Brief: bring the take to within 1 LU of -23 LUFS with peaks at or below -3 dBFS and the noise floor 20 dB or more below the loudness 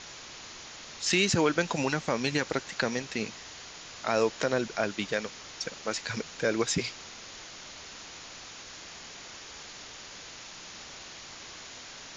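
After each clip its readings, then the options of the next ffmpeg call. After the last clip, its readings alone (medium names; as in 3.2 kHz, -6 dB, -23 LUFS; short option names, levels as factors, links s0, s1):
noise floor -46 dBFS; noise floor target -50 dBFS; loudness -29.5 LUFS; peak level -11.5 dBFS; loudness target -23.0 LUFS
-> -af "afftdn=nr=6:nf=-46"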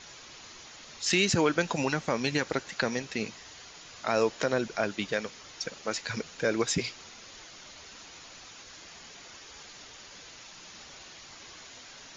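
noise floor -49 dBFS; noise floor target -50 dBFS
-> -af "afftdn=nr=6:nf=-49"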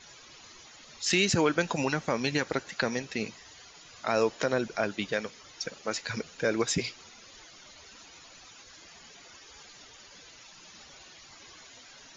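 noise floor -52 dBFS; loudness -30.0 LUFS; peak level -12.0 dBFS; loudness target -23.0 LUFS
-> -af "volume=2.24"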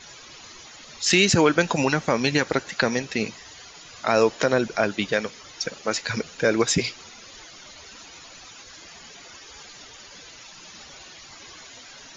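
loudness -23.0 LUFS; peak level -5.0 dBFS; noise floor -45 dBFS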